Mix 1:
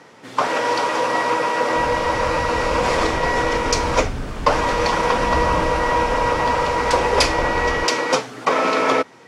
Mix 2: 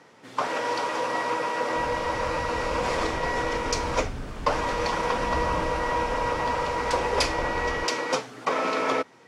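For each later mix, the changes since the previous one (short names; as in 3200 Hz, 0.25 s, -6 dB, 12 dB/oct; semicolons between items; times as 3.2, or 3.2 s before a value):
first sound -7.5 dB; second sound -7.5 dB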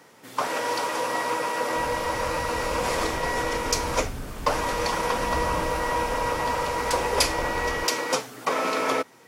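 first sound: remove air absorption 76 m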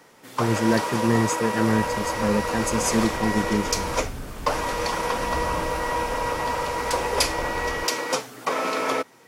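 speech: unmuted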